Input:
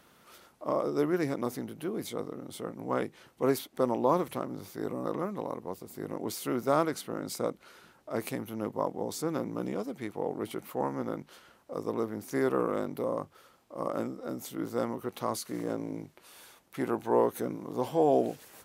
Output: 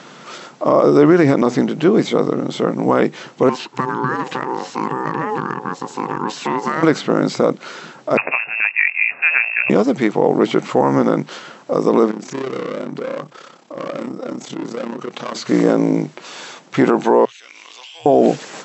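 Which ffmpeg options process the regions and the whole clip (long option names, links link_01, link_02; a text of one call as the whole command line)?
ffmpeg -i in.wav -filter_complex "[0:a]asettb=1/sr,asplit=3[link_01][link_02][link_03];[link_01]atrim=end=3.494[link_04];[link_02]atrim=start=3.49:end=6.83,asetpts=PTS-STARTPTS,afade=type=in:duration=0.004:curve=qsin,afade=type=out:start_time=3.336:duration=0.004:curve=qsin,acompressor=threshold=-35dB:ratio=4:attack=3.2:release=140:knee=1:detection=peak,aeval=exprs='val(0)*sin(2*PI*640*n/s)':channel_layout=same[link_05];[link_03]atrim=start=6.826[link_06];[link_04][link_05]acrossfade=duration=0.004:curve1=hsin:curve2=qsin[link_07];[link_07][link_06]acrossfade=duration=0.004:curve1=qsin:curve2=hsin,asettb=1/sr,asplit=3[link_08][link_09][link_10];[link_08]atrim=end=8.174[link_11];[link_09]atrim=start=8.17:end=9.7,asetpts=PTS-STARTPTS,afade=type=in:duration=0.004:curve=qsin,afade=type=out:start_time=1.526:duration=0.004:curve=qsin,highpass=frequency=520:poles=1,lowpass=frequency=2500:width_type=q:width=0.5098,lowpass=frequency=2500:width_type=q:width=0.6013,lowpass=frequency=2500:width_type=q:width=0.9,lowpass=frequency=2500:width_type=q:width=2.563,afreqshift=-2900[link_12];[link_10]atrim=start=9.696[link_13];[link_11][link_12]acrossfade=duration=0.004:curve1=hsin:curve2=qsin[link_14];[link_14][link_13]acrossfade=duration=0.004:curve1=qsin:curve2=hsin,asettb=1/sr,asplit=3[link_15][link_16][link_17];[link_15]atrim=end=12.114[link_18];[link_16]atrim=start=12.11:end=15.36,asetpts=PTS-STARTPTS,afade=type=in:duration=0.004:curve=qsin,afade=type=out:start_time=3.246:duration=0.004:curve=qsin,volume=33.5dB,asoftclip=hard,volume=-33.5dB,acompressor=threshold=-42dB:ratio=6:attack=3.2:release=140:knee=1:detection=peak,tremolo=f=33:d=0.71[link_19];[link_17]atrim=start=15.356[link_20];[link_18][link_19]acrossfade=duration=0.004:curve1=hsin:curve2=qsin[link_21];[link_21][link_20]acrossfade=duration=0.004:curve1=qsin:curve2=hsin,asettb=1/sr,asplit=3[link_22][link_23][link_24];[link_22]atrim=end=17.254[link_25];[link_23]atrim=start=17.25:end=18.06,asetpts=PTS-STARTPTS,afade=type=in:duration=0.004:curve=qsin,afade=type=out:start_time=0.806:duration=0.004:curve=qsin,highpass=frequency=2700:width_type=q:width=4.1,acompressor=threshold=-55dB:ratio=16:attack=3.2:release=140:knee=1:detection=peak[link_26];[link_24]atrim=start=18.056[link_27];[link_25][link_26]acrossfade=duration=0.004:curve1=hsin:curve2=qsin[link_28];[link_28][link_27]acrossfade=duration=0.004:curve1=qsin:curve2=hsin,afftfilt=real='re*between(b*sr/4096,120,7900)':imag='im*between(b*sr/4096,120,7900)':win_size=4096:overlap=0.75,acrossover=split=3400[link_29][link_30];[link_30]acompressor=threshold=-55dB:ratio=4:attack=1:release=60[link_31];[link_29][link_31]amix=inputs=2:normalize=0,alimiter=level_in=22.5dB:limit=-1dB:release=50:level=0:latency=1,volume=-1dB" out.wav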